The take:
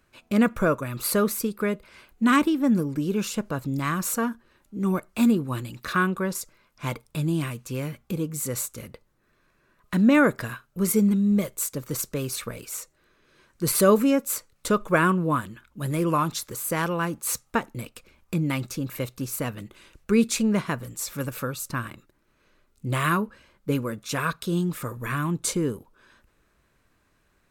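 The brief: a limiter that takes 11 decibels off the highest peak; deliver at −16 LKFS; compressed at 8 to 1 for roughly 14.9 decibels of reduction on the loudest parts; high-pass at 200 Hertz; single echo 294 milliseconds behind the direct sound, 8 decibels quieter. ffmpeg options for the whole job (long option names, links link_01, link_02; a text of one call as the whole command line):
ffmpeg -i in.wav -af "highpass=200,acompressor=threshold=-30dB:ratio=8,alimiter=level_in=2.5dB:limit=-24dB:level=0:latency=1,volume=-2.5dB,aecho=1:1:294:0.398,volume=21dB" out.wav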